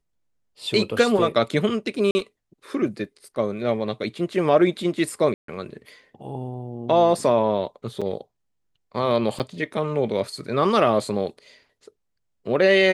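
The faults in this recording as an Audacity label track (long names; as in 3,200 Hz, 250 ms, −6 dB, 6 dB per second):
2.110000	2.150000	drop-out 40 ms
5.340000	5.480000	drop-out 143 ms
8.010000	8.020000	drop-out 6.3 ms
9.390000	9.400000	drop-out 8.6 ms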